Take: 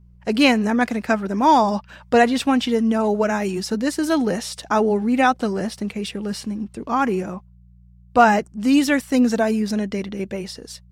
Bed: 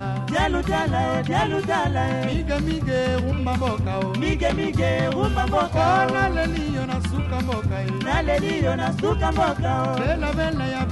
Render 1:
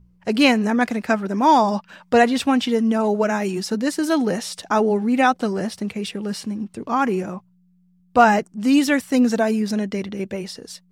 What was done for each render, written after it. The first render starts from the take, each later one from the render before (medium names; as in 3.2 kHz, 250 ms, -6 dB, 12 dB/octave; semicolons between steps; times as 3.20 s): de-hum 60 Hz, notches 2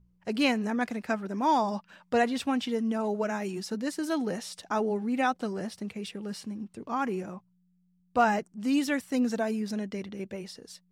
trim -10 dB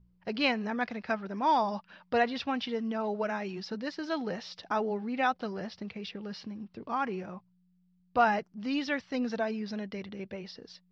steep low-pass 5.3 kHz 48 dB/octave; dynamic bell 280 Hz, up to -6 dB, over -42 dBFS, Q 1.1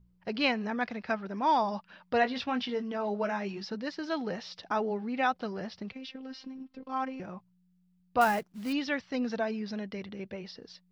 2.20–3.69 s: doubling 20 ms -8 dB; 5.92–7.20 s: robot voice 263 Hz; 8.21–8.73 s: short-mantissa float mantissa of 2-bit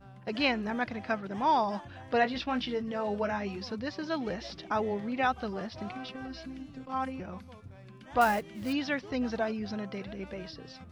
add bed -25.5 dB